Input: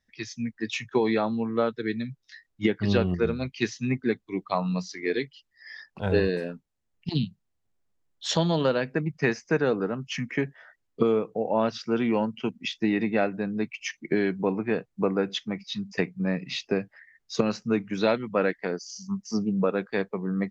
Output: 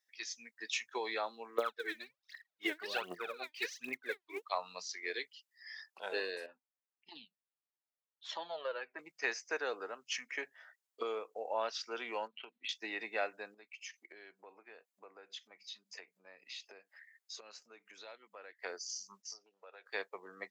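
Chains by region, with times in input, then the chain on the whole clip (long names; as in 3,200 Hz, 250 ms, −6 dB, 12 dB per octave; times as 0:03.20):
0:01.58–0:04.42: high-frequency loss of the air 200 metres + phase shifter 1.3 Hz, delay 3.4 ms, feedback 79%
0:06.46–0:08.99: low-pass filter 2,500 Hz + flanger whose copies keep moving one way falling 1.6 Hz
0:12.27–0:12.69: linear-phase brick-wall low-pass 4,400 Hz + downward compressor 12 to 1, threshold −32 dBFS
0:13.54–0:18.64: downward compressor 3 to 1, threshold −42 dBFS + notch filter 5,700 Hz, Q 17
0:19.22–0:19.86: parametric band 1,100 Hz −7 dB 0.61 octaves + downward compressor 10 to 1, threshold −33 dBFS + band-pass filter 590–6,100 Hz
whole clip: Bessel high-pass filter 710 Hz, order 4; high-shelf EQ 5,900 Hz +11.5 dB; level −7 dB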